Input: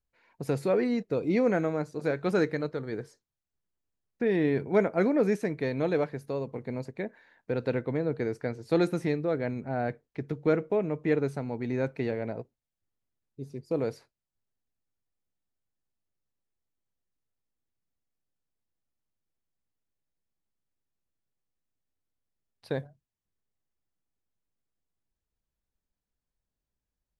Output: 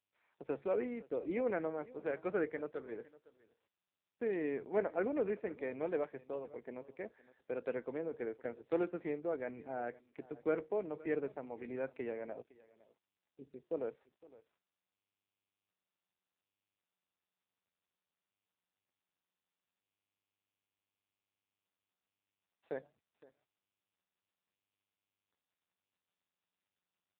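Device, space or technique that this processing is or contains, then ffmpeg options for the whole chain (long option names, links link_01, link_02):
satellite phone: -af "highpass=320,lowpass=3400,aecho=1:1:511:0.0944,volume=-7dB" -ar 8000 -c:a libopencore_amrnb -b:a 5900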